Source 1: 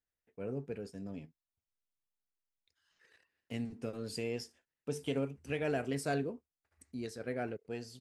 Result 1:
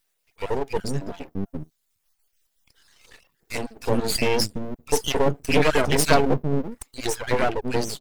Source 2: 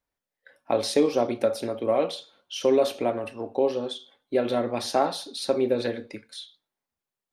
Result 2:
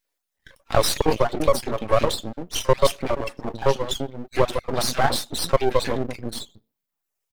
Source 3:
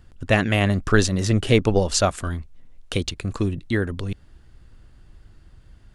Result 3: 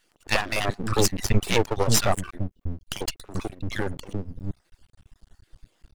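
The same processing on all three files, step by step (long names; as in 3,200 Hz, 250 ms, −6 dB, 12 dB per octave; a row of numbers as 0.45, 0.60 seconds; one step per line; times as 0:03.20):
time-frequency cells dropped at random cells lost 26%
reverb reduction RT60 0.85 s
high-shelf EQ 4,100 Hz +5.5 dB
three-band delay without the direct sound highs, mids, lows 40/380 ms, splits 300/1,300 Hz
half-wave rectification
normalise the peak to −2 dBFS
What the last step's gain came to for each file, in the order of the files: +23.0, +11.0, +3.5 decibels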